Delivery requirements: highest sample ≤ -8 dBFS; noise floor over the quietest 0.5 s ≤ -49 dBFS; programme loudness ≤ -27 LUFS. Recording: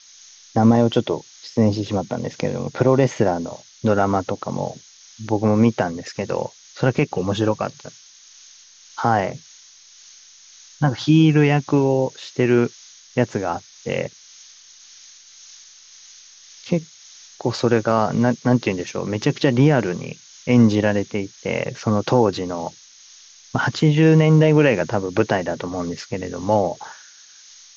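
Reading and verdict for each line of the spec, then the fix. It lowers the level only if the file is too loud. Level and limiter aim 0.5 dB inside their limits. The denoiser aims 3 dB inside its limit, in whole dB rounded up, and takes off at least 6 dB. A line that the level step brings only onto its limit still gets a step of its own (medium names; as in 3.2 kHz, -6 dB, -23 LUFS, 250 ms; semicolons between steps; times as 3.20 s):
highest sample -4.0 dBFS: fail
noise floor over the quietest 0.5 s -47 dBFS: fail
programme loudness -20.0 LUFS: fail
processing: trim -7.5 dB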